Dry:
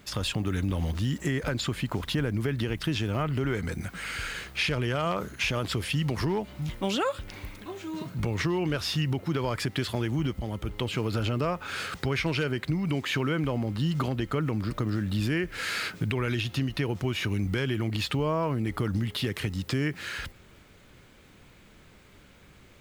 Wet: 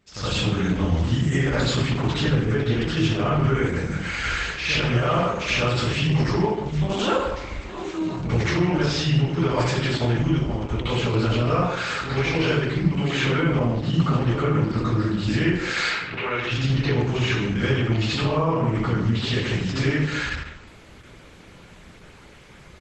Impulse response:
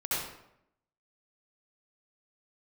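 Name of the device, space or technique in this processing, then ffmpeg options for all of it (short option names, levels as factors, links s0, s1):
speakerphone in a meeting room: -filter_complex "[0:a]asettb=1/sr,asplit=3[s0][s1][s2];[s0]atrim=end=15.824[s3];[s1]atrim=start=15.82:end=16.44,asetpts=PTS-STARTPTS,afade=t=in:d=0.004:c=qsin,afade=t=out:st=0.616:d=0.004:c=qsin,acrossover=split=400 4100:gain=0.158 1 0.178[s4][s5][s6];[s4][s5][s6]amix=inputs=3:normalize=0[s7];[s2]atrim=start=16.436[s8];[s3][s7]acrossfade=d=0.004:c1=hsin:c2=qsin[s9];[s9][s8]acrossfade=d=0.004:c1=qsin:c2=hsin[s10];[1:a]atrim=start_sample=2205[s11];[s10][s11]afir=irnorm=-1:irlink=0,asplit=2[s12][s13];[s13]adelay=150,highpass=300,lowpass=3400,asoftclip=type=hard:threshold=0.15,volume=0.251[s14];[s12][s14]amix=inputs=2:normalize=0,dynaudnorm=f=130:g=3:m=2.82,volume=0.447" -ar 48000 -c:a libopus -b:a 12k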